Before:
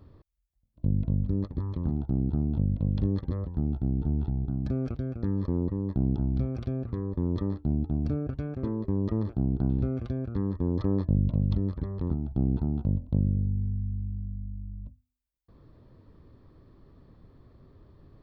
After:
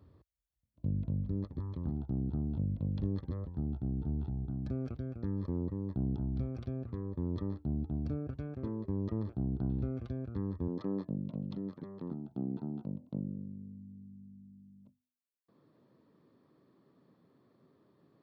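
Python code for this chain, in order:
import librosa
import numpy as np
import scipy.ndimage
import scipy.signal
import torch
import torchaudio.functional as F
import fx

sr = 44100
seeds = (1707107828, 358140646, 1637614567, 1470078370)

y = fx.highpass(x, sr, hz=fx.steps((0.0, 56.0), (10.68, 160.0)), slope=24)
y = y * librosa.db_to_amplitude(-7.0)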